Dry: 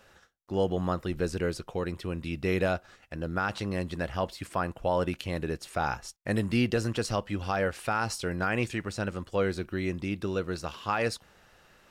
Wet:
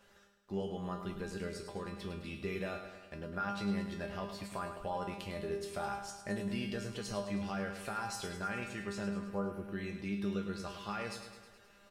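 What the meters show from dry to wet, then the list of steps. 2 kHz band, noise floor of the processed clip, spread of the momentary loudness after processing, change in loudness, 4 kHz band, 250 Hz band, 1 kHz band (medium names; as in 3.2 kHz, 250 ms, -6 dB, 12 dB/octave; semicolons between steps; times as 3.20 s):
-9.5 dB, -62 dBFS, 6 LU, -8.5 dB, -7.5 dB, -6.5 dB, -8.5 dB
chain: spectral replace 9.19–9.64 s, 1.5–9.7 kHz after; compression 2:1, threshold -34 dBFS, peak gain reduction 7.5 dB; feedback comb 200 Hz, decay 0.37 s, harmonics all, mix 90%; feedback delay 105 ms, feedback 60%, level -9 dB; trim +7.5 dB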